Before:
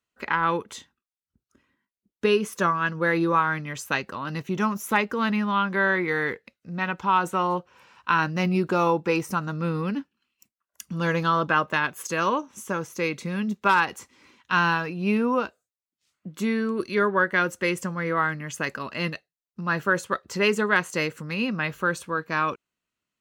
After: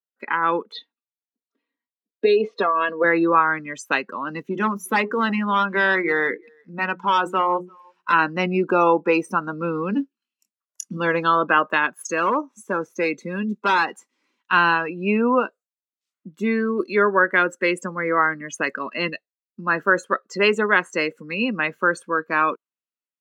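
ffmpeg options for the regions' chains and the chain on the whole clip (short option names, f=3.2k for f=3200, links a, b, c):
-filter_complex "[0:a]asettb=1/sr,asplit=3[a][b][c];[a]atrim=end=0.724[d];[b]atrim=start=0.72:end=3.04,asetpts=PTS-STARTPTS,afade=t=in:d=0.004:c=qsin,afade=t=out:st=2.316:d=0.004:c=qsin,aecho=1:1:4.3:0.65,atrim=end_sample=102312,acompressor=threshold=-20dB:ratio=12:attack=3.2:release=140:knee=1:detection=peak,highpass=290,equalizer=f=310:t=q:w=4:g=7,equalizer=f=450:t=q:w=4:g=5,equalizer=f=680:t=q:w=4:g=7,equalizer=f=1.5k:t=q:w=4:g=-6,equalizer=f=2.2k:t=q:w=4:g=3,equalizer=f=4.1k:t=q:w=4:g=8,lowpass=f=4.6k:w=0.5412,lowpass=f=4.6k:w=1.3066[e];[c]atrim=start=3.036[f];[d][e]acrossfade=d=0.004:c1=hsin:c2=qsin[g];[g][f]acrossfade=d=0.004:c1=qsin:c2=hsin,asettb=1/sr,asplit=3[h][i][j];[h]atrim=end=4.514[k];[i]atrim=start=4.51:end=8.13,asetpts=PTS-STARTPTS,afade=t=in:d=0.004:c=qsin,afade=t=out:st=3.616:d=0.004:c=qsin,volume=19.5dB,asoftclip=hard,volume=-19.5dB,bandreject=f=60:t=h:w=6,bandreject=f=120:t=h:w=6,bandreject=f=180:t=h:w=6,bandreject=f=240:t=h:w=6,bandreject=f=300:t=h:w=6,bandreject=f=360:t=h:w=6,bandreject=f=420:t=h:w=6,aecho=1:1:345:0.075,atrim=end_sample=159642[l];[j]atrim=start=8.126[m];[k][l]acrossfade=d=0.004:c1=hsin:c2=qsin[n];[n][m]acrossfade=d=0.004:c1=qsin:c2=hsin,asettb=1/sr,asplit=3[o][p][q];[o]atrim=end=9.904[r];[p]atrim=start=9.9:end=10.97,asetpts=PTS-STARTPTS,afade=t=in:d=0.004:c=qsin,afade=t=out:st=1.066:d=0.004:c=qsin,lowpass=9.9k,bass=f=250:g=4,treble=f=4k:g=8,asplit=2[s][t];[t]adelay=25,volume=-9dB[u];[s][u]amix=inputs=2:normalize=0,atrim=end_sample=47187[v];[q]atrim=start=10.966[w];[r][v]acrossfade=d=0.004:c1=hsin:c2=qsin[x];[x][w]acrossfade=d=0.004:c1=qsin:c2=hsin,asettb=1/sr,asplit=3[y][z][aa];[y]atrim=end=12.114[ab];[z]atrim=start=12.11:end=13.93,asetpts=PTS-STARTPTS,afade=t=in:d=0.004:c=qsin,afade=t=out:st=1.816:d=0.004:c=qsin,bandreject=f=3k:w=11,asoftclip=type=hard:threshold=-20.5dB[ac];[aa]atrim=start=13.926[ad];[ab][ac]acrossfade=d=0.004:c1=hsin:c2=qsin[ae];[ae][ad]acrossfade=d=0.004:c1=qsin:c2=hsin,afftdn=nr=20:nf=-34,highpass=f=220:w=0.5412,highpass=f=220:w=1.3066,dynaudnorm=f=190:g=5:m=5.5dB"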